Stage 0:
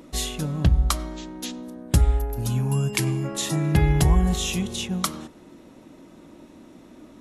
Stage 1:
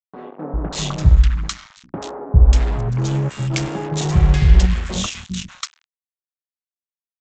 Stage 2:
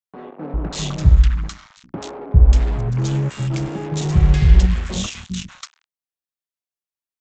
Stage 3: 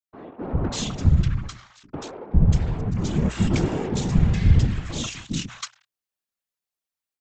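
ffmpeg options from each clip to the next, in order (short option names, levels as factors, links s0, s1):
-filter_complex "[0:a]lowshelf=f=85:g=11,aresample=16000,acrusher=bits=3:mix=0:aa=0.5,aresample=44100,acrossover=split=220|1300[s0][s1][s2];[s0]adelay=400[s3];[s2]adelay=590[s4];[s3][s1][s4]amix=inputs=3:normalize=0,volume=1.12"
-filter_complex "[0:a]acrossover=split=450|1400[s0][s1][s2];[s1]asoftclip=type=tanh:threshold=0.0168[s3];[s2]alimiter=limit=0.112:level=0:latency=1:release=447[s4];[s0][s3][s4]amix=inputs=3:normalize=0"
-af "dynaudnorm=f=310:g=3:m=2.82,afftfilt=real='hypot(re,im)*cos(2*PI*random(0))':imag='hypot(re,im)*sin(2*PI*random(1))':win_size=512:overlap=0.75,bandreject=f=60:t=h:w=6,bandreject=f=120:t=h:w=6"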